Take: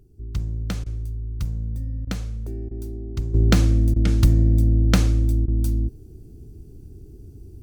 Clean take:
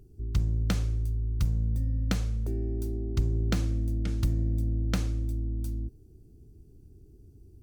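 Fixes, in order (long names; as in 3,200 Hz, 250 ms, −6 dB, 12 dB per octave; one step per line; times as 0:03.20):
repair the gap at 0:00.84/0:02.05/0:02.69/0:03.94/0:05.46, 20 ms
level 0 dB, from 0:03.34 −11 dB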